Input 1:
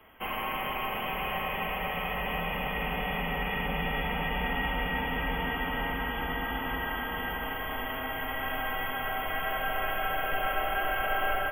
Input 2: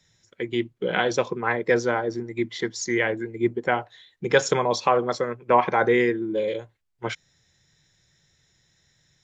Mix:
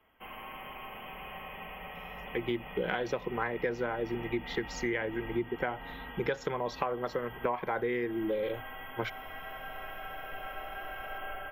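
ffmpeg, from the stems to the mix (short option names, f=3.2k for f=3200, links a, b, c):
-filter_complex "[0:a]highshelf=f=11k:g=-4.5,volume=-11.5dB[a];[1:a]lowpass=3.4k,adelay=1950,volume=-2.5dB[b];[a][b]amix=inputs=2:normalize=0,acompressor=threshold=-28dB:ratio=10"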